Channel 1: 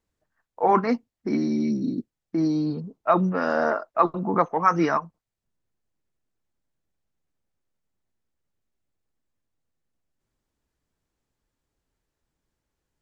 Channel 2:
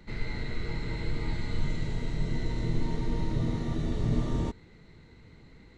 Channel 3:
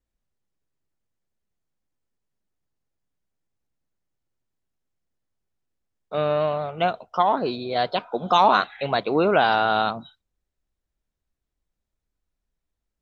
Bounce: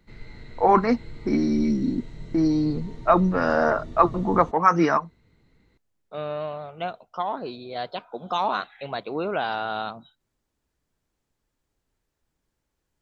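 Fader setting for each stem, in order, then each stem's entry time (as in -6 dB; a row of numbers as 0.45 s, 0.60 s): +2.0 dB, -9.0 dB, -8.0 dB; 0.00 s, 0.00 s, 0.00 s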